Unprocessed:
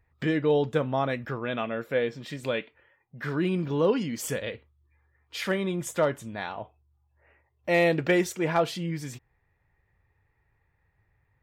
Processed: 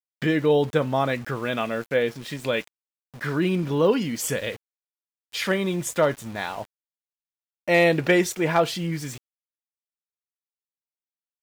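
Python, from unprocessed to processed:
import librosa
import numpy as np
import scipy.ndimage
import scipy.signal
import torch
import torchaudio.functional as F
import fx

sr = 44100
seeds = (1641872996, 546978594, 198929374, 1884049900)

y = fx.high_shelf(x, sr, hz=2100.0, db=3.0)
y = np.where(np.abs(y) >= 10.0 ** (-43.0 / 20.0), y, 0.0)
y = y * librosa.db_to_amplitude(3.5)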